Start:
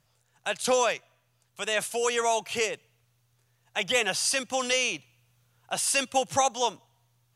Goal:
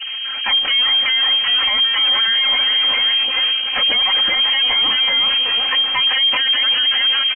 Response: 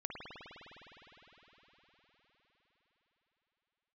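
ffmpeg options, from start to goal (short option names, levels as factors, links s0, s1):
-filter_complex "[0:a]aeval=exprs='val(0)+0.5*0.0188*sgn(val(0))':c=same,highshelf=f=2200:g=-9,afftfilt=real='re*gte(hypot(re,im),0.01)':imag='im*gte(hypot(re,im),0.01)':win_size=1024:overlap=0.75,highpass=f=110:w=0.5412,highpass=f=110:w=1.3066,asplit=6[s0][s1][s2][s3][s4][s5];[s1]adelay=379,afreqshift=57,volume=0.562[s6];[s2]adelay=758,afreqshift=114,volume=0.224[s7];[s3]adelay=1137,afreqshift=171,volume=0.0902[s8];[s4]adelay=1516,afreqshift=228,volume=0.0359[s9];[s5]adelay=1895,afreqshift=285,volume=0.0145[s10];[s0][s6][s7][s8][s9][s10]amix=inputs=6:normalize=0,adynamicequalizer=threshold=0.00794:dfrequency=550:dqfactor=3.4:tfrequency=550:tqfactor=3.4:attack=5:release=100:ratio=0.375:range=3:mode=boostabove:tftype=bell,aresample=11025,aeval=exprs='abs(val(0))':c=same,aresample=44100,acompressor=threshold=0.0631:ratio=10,lowpass=f=2700:t=q:w=0.5098,lowpass=f=2700:t=q:w=0.6013,lowpass=f=2700:t=q:w=0.9,lowpass=f=2700:t=q:w=2.563,afreqshift=-3200,aecho=1:1:3.8:0.67,alimiter=level_in=20:limit=0.891:release=50:level=0:latency=1,volume=0.376"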